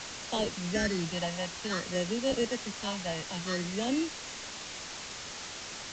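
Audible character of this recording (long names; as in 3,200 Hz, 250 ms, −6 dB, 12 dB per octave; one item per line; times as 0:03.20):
aliases and images of a low sample rate 2,400 Hz, jitter 0%
phaser sweep stages 6, 0.56 Hz, lowest notch 390–1,600 Hz
a quantiser's noise floor 6 bits, dither triangular
AAC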